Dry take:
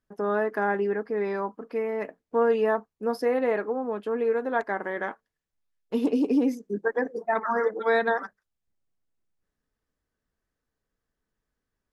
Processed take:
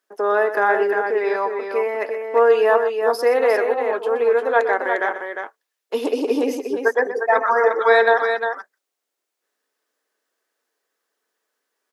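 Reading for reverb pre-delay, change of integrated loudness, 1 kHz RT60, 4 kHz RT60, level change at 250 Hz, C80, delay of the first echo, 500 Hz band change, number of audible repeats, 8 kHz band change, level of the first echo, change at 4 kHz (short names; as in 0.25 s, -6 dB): none, +8.0 dB, none, none, -1.5 dB, none, 0.123 s, +8.5 dB, 2, n/a, -12.0 dB, +11.5 dB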